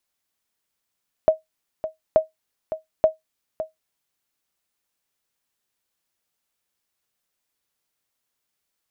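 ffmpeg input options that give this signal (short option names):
-f lavfi -i "aevalsrc='0.473*(sin(2*PI*633*mod(t,0.88))*exp(-6.91*mod(t,0.88)/0.15)+0.251*sin(2*PI*633*max(mod(t,0.88)-0.56,0))*exp(-6.91*max(mod(t,0.88)-0.56,0)/0.15))':d=2.64:s=44100"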